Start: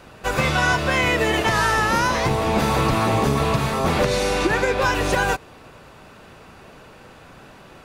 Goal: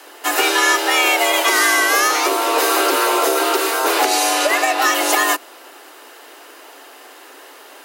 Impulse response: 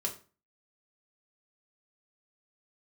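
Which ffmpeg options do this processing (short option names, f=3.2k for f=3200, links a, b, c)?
-af "afreqshift=250,aemphasis=mode=production:type=bsi,volume=3dB"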